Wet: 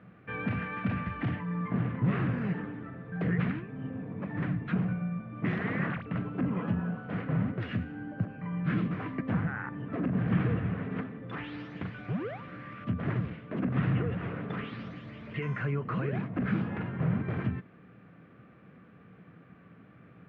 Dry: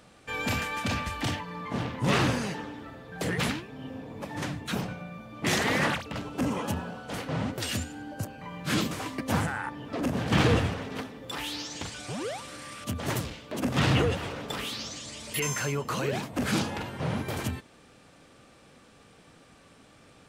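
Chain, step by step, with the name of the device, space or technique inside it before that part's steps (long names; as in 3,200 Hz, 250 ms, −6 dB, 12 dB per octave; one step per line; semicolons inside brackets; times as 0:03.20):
bass amplifier (downward compressor 4 to 1, threshold −29 dBFS, peak gain reduction 10 dB; loudspeaker in its box 77–2,100 Hz, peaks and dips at 120 Hz +7 dB, 180 Hz +10 dB, 560 Hz −5 dB, 870 Hz −9 dB)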